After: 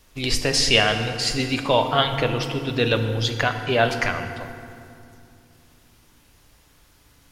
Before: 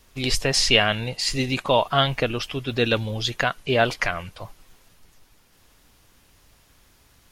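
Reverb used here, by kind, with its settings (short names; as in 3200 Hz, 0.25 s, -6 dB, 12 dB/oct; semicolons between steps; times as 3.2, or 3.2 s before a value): FDN reverb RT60 2.5 s, low-frequency decay 1.45×, high-frequency decay 0.6×, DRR 6 dB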